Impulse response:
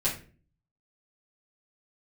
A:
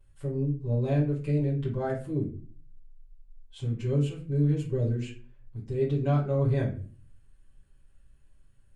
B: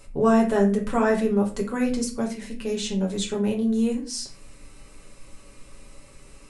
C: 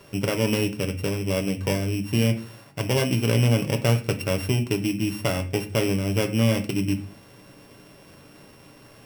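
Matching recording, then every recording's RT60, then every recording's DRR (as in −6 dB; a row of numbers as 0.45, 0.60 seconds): A; 0.40, 0.40, 0.40 seconds; −9.0, −1.0, 4.5 decibels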